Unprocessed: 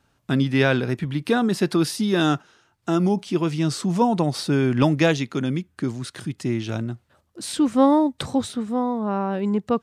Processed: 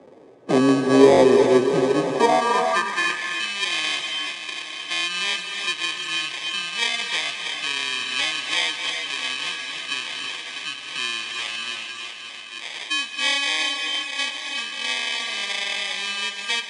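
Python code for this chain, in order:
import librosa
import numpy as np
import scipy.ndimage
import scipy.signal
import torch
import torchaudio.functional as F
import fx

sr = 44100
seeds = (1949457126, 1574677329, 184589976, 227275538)

p1 = fx.stretch_vocoder(x, sr, factor=1.7)
p2 = fx.echo_swing(p1, sr, ms=859, ratio=3, feedback_pct=55, wet_db=-13.5)
p3 = fx.sample_hold(p2, sr, seeds[0], rate_hz=1400.0, jitter_pct=0)
p4 = fx.filter_sweep_highpass(p3, sr, from_hz=420.0, to_hz=2900.0, start_s=1.87, end_s=3.34, q=2.4)
p5 = fx.rev_gated(p4, sr, seeds[1], gate_ms=380, shape='rising', drr_db=6.0)
p6 = fx.rider(p5, sr, range_db=5, speed_s=2.0)
p7 = p5 + F.gain(torch.from_numpy(p6), 1.0).numpy()
p8 = scipy.signal.sosfilt(scipy.signal.butter(16, 10000.0, 'lowpass', fs=sr, output='sos'), p7)
p9 = fx.tilt_eq(p8, sr, slope=-3.5)
y = fx.band_squash(p9, sr, depth_pct=40)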